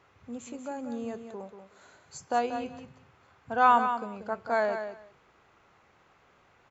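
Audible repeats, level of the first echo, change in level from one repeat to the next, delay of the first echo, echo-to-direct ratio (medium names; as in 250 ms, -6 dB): 2, -8.5 dB, -16.0 dB, 186 ms, -8.5 dB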